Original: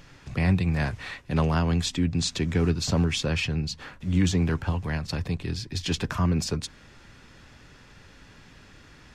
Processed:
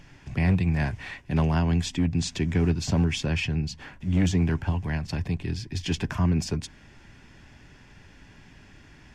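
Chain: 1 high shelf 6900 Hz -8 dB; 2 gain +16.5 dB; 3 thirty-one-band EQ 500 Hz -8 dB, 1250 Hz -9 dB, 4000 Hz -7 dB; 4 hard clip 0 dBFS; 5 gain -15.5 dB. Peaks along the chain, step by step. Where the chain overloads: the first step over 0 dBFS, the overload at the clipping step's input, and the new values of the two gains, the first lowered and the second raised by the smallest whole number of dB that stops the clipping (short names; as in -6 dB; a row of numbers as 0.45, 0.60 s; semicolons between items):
-12.5, +4.0, +4.0, 0.0, -15.5 dBFS; step 2, 4.0 dB; step 2 +12.5 dB, step 5 -11.5 dB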